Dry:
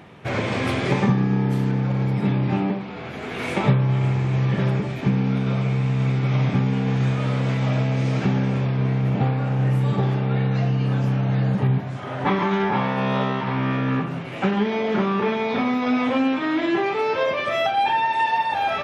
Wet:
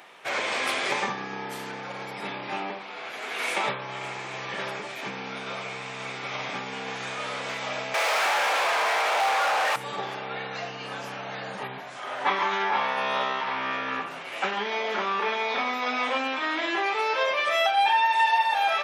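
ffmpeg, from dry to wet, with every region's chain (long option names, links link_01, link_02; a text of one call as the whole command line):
ffmpeg -i in.wav -filter_complex "[0:a]asettb=1/sr,asplit=3[link_01][link_02][link_03];[link_01]atrim=end=7.944[link_04];[link_02]atrim=start=7.94:end=9.76,asetpts=PTS-STARTPTS,afade=type=in:duration=0.004:curve=qsin,afade=type=out:start_time=1.816:duration=0.004:curve=qsin,highpass=frequency=540:width=0.5412,highpass=frequency=540:width=1.3066,asplit=2[link_05][link_06];[link_06]highpass=frequency=720:poles=1,volume=36dB,asoftclip=type=tanh:threshold=-13.5dB[link_07];[link_05][link_07]amix=inputs=2:normalize=0,lowpass=frequency=1300:poles=1,volume=-6dB[link_08];[link_03]atrim=start=9.756[link_09];[link_04][link_08]acrossfade=duration=0.004:curve1=hsin:curve2=qsin[link_10];[link_10][link_09]acrossfade=duration=0.004:curve1=qsin:curve2=hsin,highpass=680,highshelf=frequency=4600:gain=7.5" out.wav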